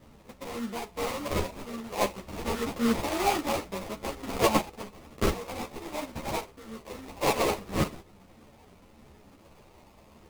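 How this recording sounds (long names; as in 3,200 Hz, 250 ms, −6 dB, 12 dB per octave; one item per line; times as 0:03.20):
phaser sweep stages 8, 0.38 Hz, lowest notch 480–1,300 Hz
aliases and images of a low sample rate 1,600 Hz, jitter 20%
a shimmering, thickened sound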